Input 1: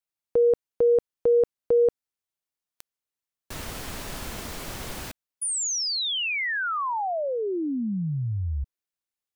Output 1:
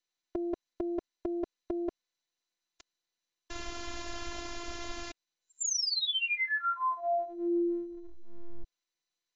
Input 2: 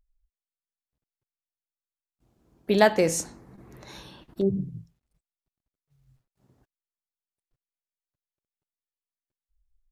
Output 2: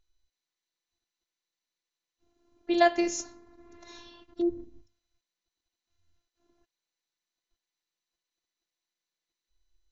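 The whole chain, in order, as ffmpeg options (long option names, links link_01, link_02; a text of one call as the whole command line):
ffmpeg -i in.wav -af "afftfilt=real='hypot(re,im)*cos(PI*b)':imag='0':win_size=512:overlap=0.75" -ar 16000 -c:a mp2 -b:a 128k out.mp2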